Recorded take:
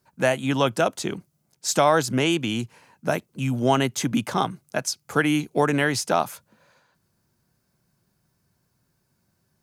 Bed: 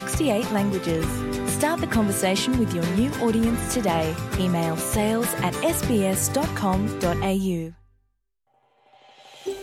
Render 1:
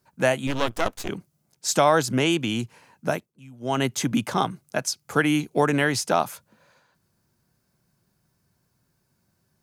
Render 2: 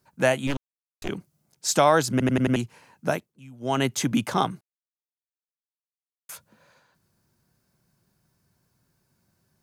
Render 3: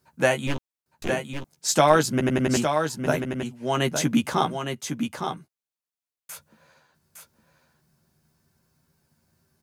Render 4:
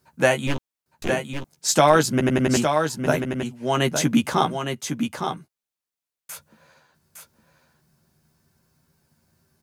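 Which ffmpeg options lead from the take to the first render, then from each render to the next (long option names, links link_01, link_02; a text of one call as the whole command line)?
ffmpeg -i in.wav -filter_complex "[0:a]asettb=1/sr,asplit=3[link_01][link_02][link_03];[link_01]atrim=end=0.474[link_04];[link_02]atrim=start=0.47:end=1.09,asetpts=PTS-STARTPTS,afade=type=in:duration=0.004:curve=qsin,afade=type=out:start_time=0.616:duration=0.004:curve=qsin,aeval=exprs='max(val(0),0)':channel_layout=same[link_05];[link_03]atrim=start=1.086[link_06];[link_04][link_05]acrossfade=duration=0.004:curve1=hsin:curve2=qsin[link_07];[link_07][link_06]acrossfade=duration=0.004:curve1=qsin:curve2=hsin,asplit=3[link_08][link_09][link_10];[link_08]atrim=end=3.34,asetpts=PTS-STARTPTS,afade=type=out:start_time=3.07:duration=0.27:silence=0.0944061[link_11];[link_09]atrim=start=3.34:end=3.59,asetpts=PTS-STARTPTS,volume=-20.5dB[link_12];[link_10]atrim=start=3.59,asetpts=PTS-STARTPTS,afade=type=in:duration=0.27:silence=0.0944061[link_13];[link_11][link_12][link_13]concat=n=3:v=0:a=1" out.wav
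ffmpeg -i in.wav -filter_complex "[0:a]asplit=10[link_01][link_02][link_03][link_04][link_05][link_06][link_07][link_08][link_09][link_10];[link_01]atrim=end=0.57,asetpts=PTS-STARTPTS,afade=type=out:start_time=0.566:duration=0.004:curve=hsin[link_11];[link_02]atrim=start=0.57:end=1.02,asetpts=PTS-STARTPTS,volume=0[link_12];[link_03]atrim=start=1.02:end=2.202,asetpts=PTS-STARTPTS,afade=type=in:duration=0.004:curve=hsin[link_13];[link_04]atrim=start=2.108:end=2.202[link_14];[link_05]atrim=start=2.108:end=2.202[link_15];[link_06]atrim=start=2.108:end=2.202[link_16];[link_07]atrim=start=2.108:end=2.202[link_17];[link_08]atrim=start=2.558:end=4.61,asetpts=PTS-STARTPTS,afade=type=out:start_time=2.048:duration=0.004:curve=hsin[link_18];[link_09]atrim=start=4.61:end=6.29,asetpts=PTS-STARTPTS,volume=0[link_19];[link_10]atrim=start=6.29,asetpts=PTS-STARTPTS,afade=type=in:duration=0.004:curve=hsin[link_20];[link_11][link_12][link_13]concat=n=3:v=0:a=1[link_21];[link_21][link_14]acrossfade=duration=0.004:curve1=hsin:curve2=hsin[link_22];[link_22][link_15]acrossfade=duration=0.004:curve1=hsin:curve2=hsin[link_23];[link_23][link_16]acrossfade=duration=0.004:curve1=hsin:curve2=hsin[link_24];[link_24][link_17]acrossfade=duration=0.004:curve1=hsin:curve2=hsin[link_25];[link_18][link_19][link_20]concat=n=3:v=0:a=1[link_26];[link_25][link_26]acrossfade=duration=0.004:curve1=hsin:curve2=hsin" out.wav
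ffmpeg -i in.wav -filter_complex "[0:a]asplit=2[link_01][link_02];[link_02]adelay=13,volume=-6dB[link_03];[link_01][link_03]amix=inputs=2:normalize=0,aecho=1:1:861:0.473" out.wav
ffmpeg -i in.wav -af "volume=2.5dB,alimiter=limit=-3dB:level=0:latency=1" out.wav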